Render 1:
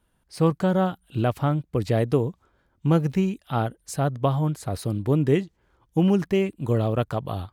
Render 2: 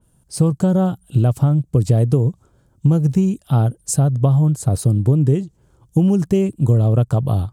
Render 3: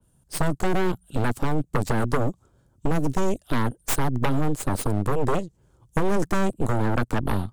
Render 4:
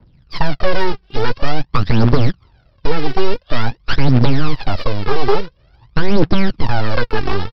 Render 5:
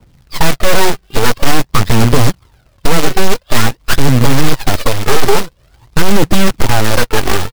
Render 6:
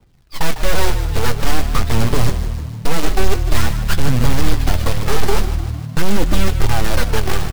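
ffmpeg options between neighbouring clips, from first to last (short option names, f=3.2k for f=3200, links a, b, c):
-af "equalizer=f=125:t=o:w=1:g=10,equalizer=f=1k:t=o:w=1:g=-3,equalizer=f=2k:t=o:w=1:g=-11,equalizer=f=4k:t=o:w=1:g=-4,equalizer=f=8k:t=o:w=1:g=11,acompressor=threshold=-19dB:ratio=6,adynamicequalizer=threshold=0.002:dfrequency=3500:dqfactor=0.7:tfrequency=3500:tqfactor=0.7:attack=5:release=100:ratio=0.375:range=2:mode=cutabove:tftype=highshelf,volume=7.5dB"
-filter_complex "[0:a]acrossover=split=190|650|4500[a][b][c][d];[a]acompressor=threshold=-24dB:ratio=16[e];[e][b][c][d]amix=inputs=4:normalize=0,aeval=exprs='0.501*(cos(1*acos(clip(val(0)/0.501,-1,1)))-cos(1*PI/2))+0.251*(cos(6*acos(clip(val(0)/0.501,-1,1)))-cos(6*PI/2))':c=same,volume=10.5dB,asoftclip=hard,volume=-10.5dB,volume=-4.5dB"
-af "aresample=11025,acrusher=bits=2:mode=log:mix=0:aa=0.000001,aresample=44100,aphaser=in_gain=1:out_gain=1:delay=2.7:decay=0.71:speed=0.48:type=triangular,volume=5dB"
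-af "acrusher=bits=2:mode=log:mix=0:aa=0.000001,volume=2.5dB"
-filter_complex "[0:a]flanger=delay=2.5:depth=9.2:regen=68:speed=0.3:shape=sinusoidal,asplit=2[a][b];[b]asplit=7[c][d][e][f][g][h][i];[c]adelay=152,afreqshift=-38,volume=-11dB[j];[d]adelay=304,afreqshift=-76,volume=-15.6dB[k];[e]adelay=456,afreqshift=-114,volume=-20.2dB[l];[f]adelay=608,afreqshift=-152,volume=-24.7dB[m];[g]adelay=760,afreqshift=-190,volume=-29.3dB[n];[h]adelay=912,afreqshift=-228,volume=-33.9dB[o];[i]adelay=1064,afreqshift=-266,volume=-38.5dB[p];[j][k][l][m][n][o][p]amix=inputs=7:normalize=0[q];[a][q]amix=inputs=2:normalize=0,volume=-3.5dB"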